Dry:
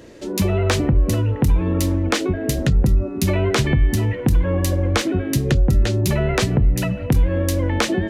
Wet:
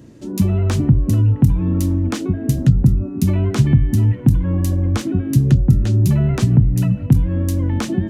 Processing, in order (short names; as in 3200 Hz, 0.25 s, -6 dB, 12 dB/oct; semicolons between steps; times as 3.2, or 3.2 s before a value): graphic EQ 125/250/500/2000/4000 Hz +11/+7/-8/-6/-4 dB; gain -3.5 dB